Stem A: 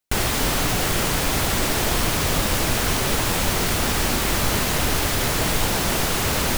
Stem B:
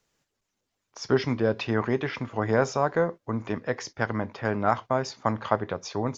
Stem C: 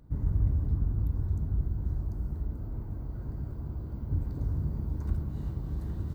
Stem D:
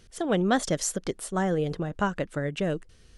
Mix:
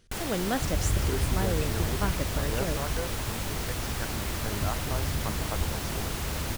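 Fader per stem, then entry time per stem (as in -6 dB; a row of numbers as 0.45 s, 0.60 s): -12.5 dB, -12.0 dB, -1.0 dB, -6.0 dB; 0.00 s, 0.00 s, 0.50 s, 0.00 s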